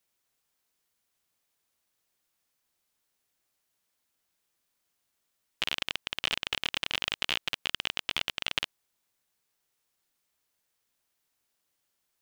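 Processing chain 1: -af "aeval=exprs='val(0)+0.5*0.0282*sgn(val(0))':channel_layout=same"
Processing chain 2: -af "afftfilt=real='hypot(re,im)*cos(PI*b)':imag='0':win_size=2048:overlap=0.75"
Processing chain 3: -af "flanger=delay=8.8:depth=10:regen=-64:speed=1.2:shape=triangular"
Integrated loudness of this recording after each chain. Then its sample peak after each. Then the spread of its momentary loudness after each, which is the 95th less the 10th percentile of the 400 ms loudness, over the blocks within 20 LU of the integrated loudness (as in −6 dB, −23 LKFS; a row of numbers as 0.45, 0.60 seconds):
−32.0, −34.5, −36.0 LKFS; −5.0, −8.5, −10.0 dBFS; 6, 3, 3 LU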